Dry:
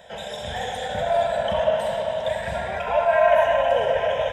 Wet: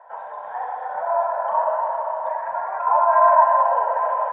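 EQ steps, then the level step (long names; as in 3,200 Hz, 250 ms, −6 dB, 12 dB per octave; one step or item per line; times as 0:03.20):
high-pass with resonance 1,000 Hz, resonance Q 5.3
low-pass filter 1,300 Hz 24 dB per octave
0.0 dB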